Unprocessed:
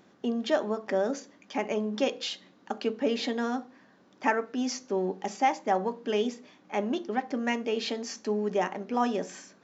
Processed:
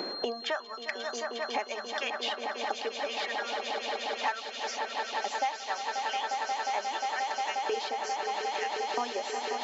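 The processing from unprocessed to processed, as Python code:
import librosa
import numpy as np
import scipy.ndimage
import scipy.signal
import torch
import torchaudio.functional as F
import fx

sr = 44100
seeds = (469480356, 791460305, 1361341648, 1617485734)

y = fx.dereverb_blind(x, sr, rt60_s=1.5)
y = fx.filter_lfo_highpass(y, sr, shape='saw_up', hz=0.78, low_hz=360.0, high_hz=4700.0, q=1.5)
y = y + 10.0 ** (-49.0 / 20.0) * np.sin(2.0 * np.pi * 4200.0 * np.arange(len(y)) / sr)
y = fx.echo_swell(y, sr, ms=178, loudest=8, wet_db=-11)
y = fx.band_squash(y, sr, depth_pct=100)
y = y * 10.0 ** (-2.5 / 20.0)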